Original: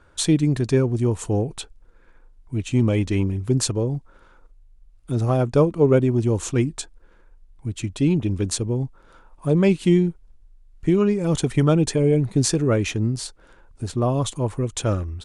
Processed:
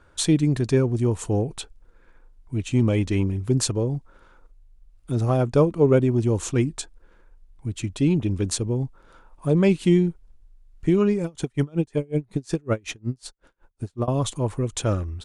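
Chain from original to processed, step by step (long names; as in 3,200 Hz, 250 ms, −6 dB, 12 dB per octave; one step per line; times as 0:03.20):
0:11.24–0:14.08: tremolo with a sine in dB 5.4 Hz, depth 34 dB
level −1 dB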